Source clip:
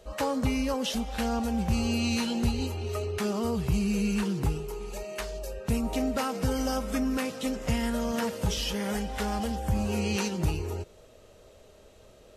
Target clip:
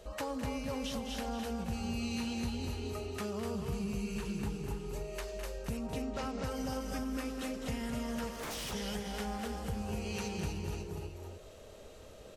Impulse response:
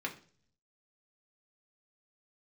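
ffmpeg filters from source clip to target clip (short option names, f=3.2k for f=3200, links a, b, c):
-filter_complex "[0:a]asettb=1/sr,asplit=3[a][b][c];[a]atrim=end=5.774[d];[b]atrim=start=5.77:end=6.44,asetpts=PTS-STARTPTS,afade=t=in:d=0.004:c=qsin,afade=t=out:st=0.666:d=0.004:c=qsin,lowpass=f=7k:w=0.5412,lowpass=f=7k:w=1.3066[e];[c]atrim=start=6.436[f];[d][e]acrossfade=d=0.004:c1=hsin:c2=qsin[g];[g][f]acrossfade=d=0.004:c1=qsin:c2=hsin,aecho=1:1:94|207|248|476|542:0.1|0.316|0.631|0.224|0.266,asettb=1/sr,asplit=3[h][i][j];[h]atrim=end=8.334[k];[i]atrim=start=8.33:end=8.73,asetpts=PTS-STARTPTS,afade=t=in:d=0.004:c=qsin,afade=t=out:st=0.396:d=0.004:c=qsin,aeval=exprs='0.0355*(abs(mod(val(0)/0.0355+3,4)-2)-1)':c=same[l];[j]atrim=start=8.726[m];[k][l]acrossfade=d=0.004:c1=hsin:c2=qsin[n];[n][m]acrossfade=d=0.004:c1=qsin:c2=hsin,acompressor=threshold=-43dB:ratio=2"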